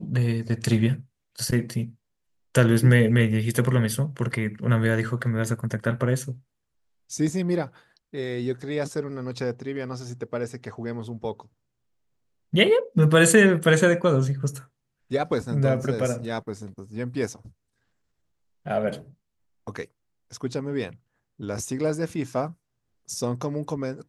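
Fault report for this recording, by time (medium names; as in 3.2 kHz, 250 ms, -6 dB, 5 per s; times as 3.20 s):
15.84 s: dropout 2.1 ms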